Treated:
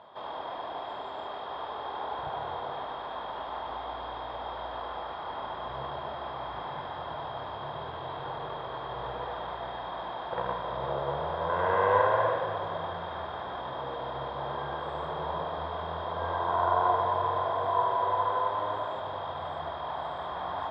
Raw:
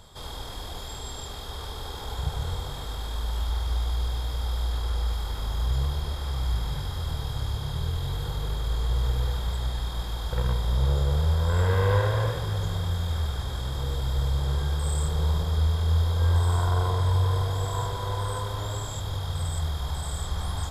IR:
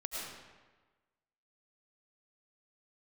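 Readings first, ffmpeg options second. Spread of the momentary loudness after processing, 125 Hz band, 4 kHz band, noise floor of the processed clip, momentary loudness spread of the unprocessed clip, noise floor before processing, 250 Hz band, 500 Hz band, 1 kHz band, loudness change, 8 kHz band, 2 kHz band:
11 LU, −20.0 dB, −8.0 dB, −39 dBFS, 11 LU, −36 dBFS, −6.5 dB, +3.5 dB, +7.5 dB, −4.5 dB, below −35 dB, +1.0 dB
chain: -filter_complex "[0:a]highpass=370,equalizer=frequency=450:width_type=q:width=4:gain=-5,equalizer=frequency=650:width_type=q:width=4:gain=7,equalizer=frequency=1000:width_type=q:width=4:gain=5,equalizer=frequency=1400:width_type=q:width=4:gain=-4,equalizer=frequency=2200:width_type=q:width=4:gain=-6,lowpass=frequency=2500:width=0.5412,lowpass=frequency=2500:width=1.3066,asplit=2[link_01][link_02];[1:a]atrim=start_sample=2205,asetrate=48510,aresample=44100[link_03];[link_02][link_03]afir=irnorm=-1:irlink=0,volume=-2.5dB[link_04];[link_01][link_04]amix=inputs=2:normalize=0"

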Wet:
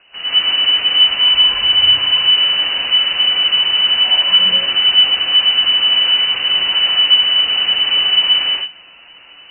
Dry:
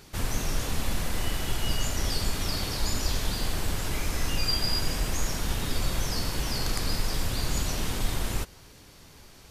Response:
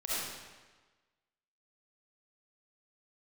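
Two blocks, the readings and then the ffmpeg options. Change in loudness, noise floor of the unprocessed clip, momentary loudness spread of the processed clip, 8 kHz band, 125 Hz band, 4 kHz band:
+20.0 dB, −51 dBFS, 4 LU, below −40 dB, below −10 dB, +26.5 dB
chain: -filter_complex "[1:a]atrim=start_sample=2205,afade=type=out:start_time=0.17:duration=0.01,atrim=end_sample=7938,asetrate=22932,aresample=44100[link_01];[0:a][link_01]afir=irnorm=-1:irlink=0,lowpass=frequency=2600:width_type=q:width=0.5098,lowpass=frequency=2600:width_type=q:width=0.6013,lowpass=frequency=2600:width_type=q:width=0.9,lowpass=frequency=2600:width_type=q:width=2.563,afreqshift=-3000,volume=2.5dB"

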